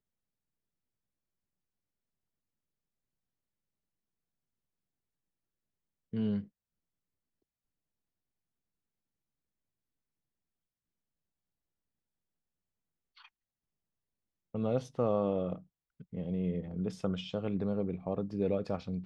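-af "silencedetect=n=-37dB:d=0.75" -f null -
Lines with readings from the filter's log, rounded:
silence_start: 0.00
silence_end: 6.14 | silence_duration: 6.14
silence_start: 6.40
silence_end: 14.55 | silence_duration: 8.14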